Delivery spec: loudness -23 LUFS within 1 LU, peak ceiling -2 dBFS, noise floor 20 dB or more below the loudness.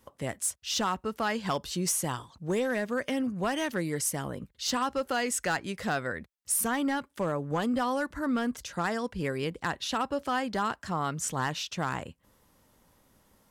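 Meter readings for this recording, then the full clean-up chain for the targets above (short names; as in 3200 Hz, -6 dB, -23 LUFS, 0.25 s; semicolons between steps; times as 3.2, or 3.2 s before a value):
clipped 0.8%; flat tops at -21.5 dBFS; loudness -31.0 LUFS; peak -21.5 dBFS; loudness target -23.0 LUFS
-> clip repair -21.5 dBFS; gain +8 dB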